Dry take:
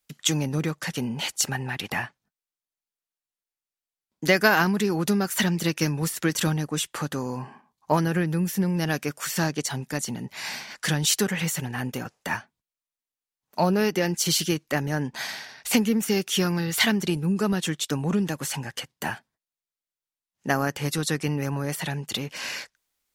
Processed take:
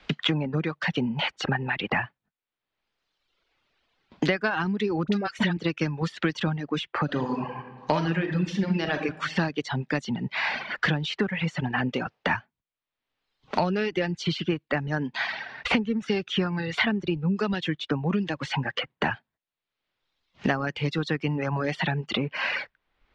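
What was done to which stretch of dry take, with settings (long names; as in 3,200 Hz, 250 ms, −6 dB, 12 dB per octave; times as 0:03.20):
0:05.03–0:05.57: all-pass dispersion highs, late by 48 ms, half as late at 810 Hz
0:07.04–0:09.03: thrown reverb, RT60 1 s, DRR 1.5 dB
whole clip: reverb reduction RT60 1.1 s; low-pass filter 3,700 Hz 24 dB per octave; multiband upward and downward compressor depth 100%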